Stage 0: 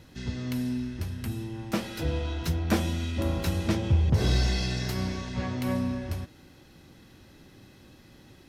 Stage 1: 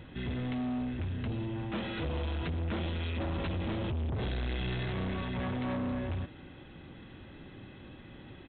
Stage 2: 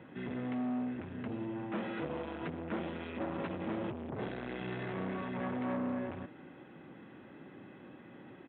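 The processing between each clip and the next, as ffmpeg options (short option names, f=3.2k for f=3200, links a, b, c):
-af "alimiter=limit=-20.5dB:level=0:latency=1:release=118,aresample=8000,asoftclip=type=tanh:threshold=-35dB,aresample=44100,volume=4dB"
-filter_complex "[0:a]highpass=73,acrossover=split=150 2400:gain=0.0794 1 0.0891[a][b][c];[a][b][c]amix=inputs=3:normalize=0"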